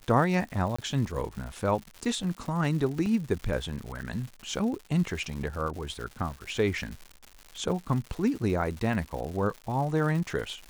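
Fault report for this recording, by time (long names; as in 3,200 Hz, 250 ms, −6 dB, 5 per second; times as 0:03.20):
surface crackle 230 per second −36 dBFS
0:00.76–0:00.79: drop-out 25 ms
0:03.06: drop-out 2.9 ms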